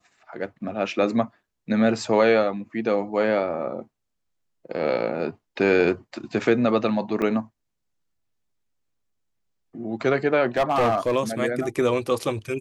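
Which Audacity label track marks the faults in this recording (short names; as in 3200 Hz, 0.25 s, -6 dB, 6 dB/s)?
7.220000	7.220000	gap 2.1 ms
10.570000	11.150000	clipped -16.5 dBFS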